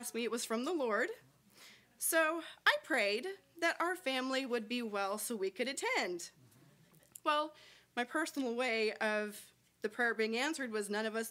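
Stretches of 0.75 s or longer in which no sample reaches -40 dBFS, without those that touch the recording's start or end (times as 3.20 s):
1.12–2.02 s
6.26–7.16 s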